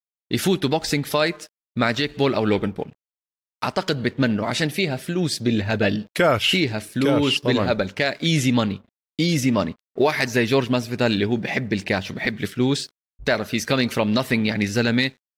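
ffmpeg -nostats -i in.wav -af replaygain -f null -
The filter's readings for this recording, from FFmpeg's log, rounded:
track_gain = +2.1 dB
track_peak = 0.347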